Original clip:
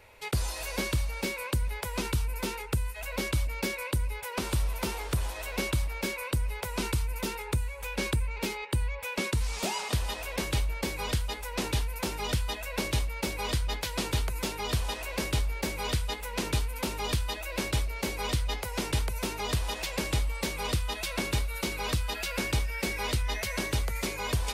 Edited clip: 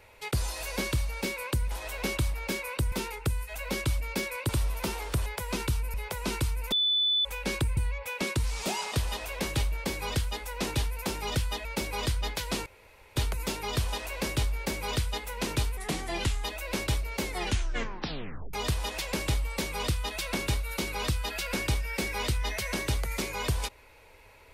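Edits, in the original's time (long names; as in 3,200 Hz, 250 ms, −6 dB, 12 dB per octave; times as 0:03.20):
0:01.71–0:02.39: swap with 0:05.25–0:06.46
0:03.96–0:04.48: remove
0:07.24–0:07.77: beep over 3,490 Hz −22.5 dBFS
0:08.29–0:08.74: remove
0:12.62–0:13.11: remove
0:14.12: splice in room tone 0.50 s
0:16.73–0:17.29: play speed 83%
0:18.07: tape stop 1.31 s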